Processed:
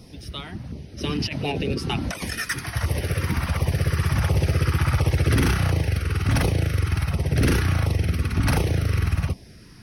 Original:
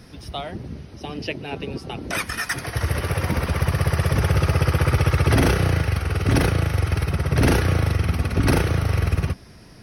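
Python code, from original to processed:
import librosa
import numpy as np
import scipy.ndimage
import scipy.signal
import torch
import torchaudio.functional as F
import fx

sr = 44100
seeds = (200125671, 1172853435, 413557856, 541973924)

y = fx.over_compress(x, sr, threshold_db=-30.0, ratio=-0.5, at=(0.97, 2.32), fade=0.02)
y = fx.filter_lfo_notch(y, sr, shape='saw_down', hz=1.4, low_hz=330.0, high_hz=1700.0, q=0.99)
y = 10.0 ** (-11.0 / 20.0) * np.tanh(y / 10.0 ** (-11.0 / 20.0))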